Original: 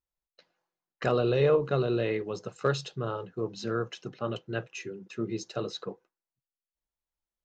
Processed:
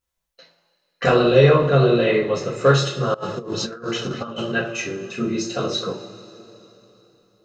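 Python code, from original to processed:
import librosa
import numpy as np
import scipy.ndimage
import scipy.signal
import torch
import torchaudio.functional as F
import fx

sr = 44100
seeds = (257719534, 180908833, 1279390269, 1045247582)

y = fx.rev_double_slope(x, sr, seeds[0], early_s=0.34, late_s=3.5, knee_db=-21, drr_db=-5.5)
y = fx.over_compress(y, sr, threshold_db=-33.0, ratio=-0.5, at=(3.14, 4.52))
y = y * librosa.db_to_amplitude(6.0)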